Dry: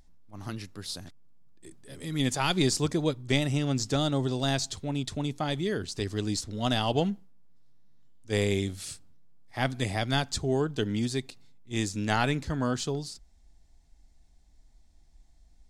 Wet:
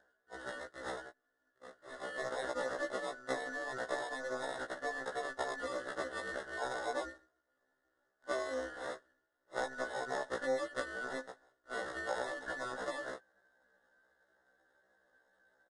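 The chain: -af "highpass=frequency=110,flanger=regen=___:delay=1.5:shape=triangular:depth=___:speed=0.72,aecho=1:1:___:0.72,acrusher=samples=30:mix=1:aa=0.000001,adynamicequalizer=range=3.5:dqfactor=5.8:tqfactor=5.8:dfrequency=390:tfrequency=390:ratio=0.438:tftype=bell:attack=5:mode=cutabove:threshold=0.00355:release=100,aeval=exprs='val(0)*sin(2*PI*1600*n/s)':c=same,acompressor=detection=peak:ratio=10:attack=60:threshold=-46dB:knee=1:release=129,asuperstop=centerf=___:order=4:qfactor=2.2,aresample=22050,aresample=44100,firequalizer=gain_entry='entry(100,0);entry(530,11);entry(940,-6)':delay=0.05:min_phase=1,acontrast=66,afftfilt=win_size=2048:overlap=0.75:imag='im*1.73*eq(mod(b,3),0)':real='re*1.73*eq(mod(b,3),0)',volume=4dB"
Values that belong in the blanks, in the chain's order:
-52, 3.8, 1.7, 2400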